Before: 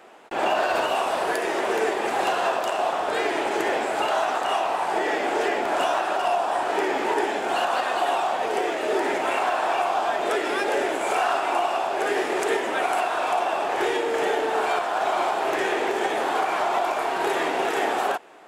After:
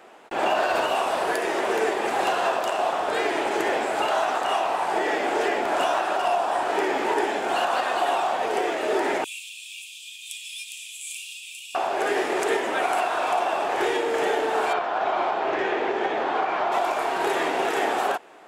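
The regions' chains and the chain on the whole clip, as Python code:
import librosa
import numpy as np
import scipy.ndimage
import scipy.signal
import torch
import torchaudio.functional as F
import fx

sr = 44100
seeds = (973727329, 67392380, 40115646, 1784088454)

y = fx.chain(x, sr, fx.cheby_ripple_highpass(hz=2400.0, ripple_db=6),
    fx.high_shelf(hz=7300.0, db=9.0), at=(9.24, 11.75))
y = fx.chain(y, sr, fx.air_absorb(metres=170.0),
    fx.resample_bad(factor=2, down='none', up='filtered'), at=(14.73, 16.72))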